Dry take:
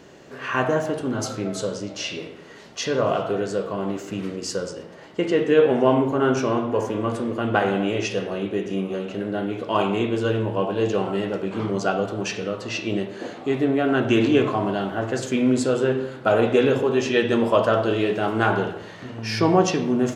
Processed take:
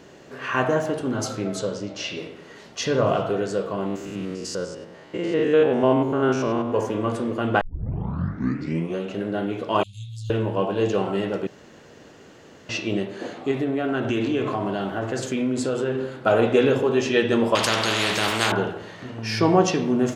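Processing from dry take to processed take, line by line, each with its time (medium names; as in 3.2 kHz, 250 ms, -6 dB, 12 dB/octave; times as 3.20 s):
1.59–2.17 s: distance through air 52 m
2.79–3.30 s: bass shelf 150 Hz +8 dB
3.86–6.74 s: spectrogram pixelated in time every 100 ms
7.61 s: tape start 1.37 s
9.83–10.30 s: Chebyshev band-stop 110–4000 Hz, order 4
11.47–12.69 s: room tone
13.51–16.12 s: compression 3:1, threshold -21 dBFS
17.55–18.52 s: spectrum-flattening compressor 4:1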